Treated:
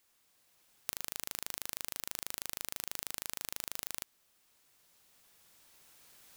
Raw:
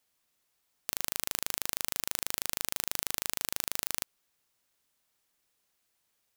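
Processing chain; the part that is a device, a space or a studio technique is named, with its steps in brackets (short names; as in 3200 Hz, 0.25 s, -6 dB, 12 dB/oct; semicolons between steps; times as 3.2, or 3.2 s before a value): cheap recorder with automatic gain (white noise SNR 28 dB; recorder AGC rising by 6.1 dB/s); gain -7 dB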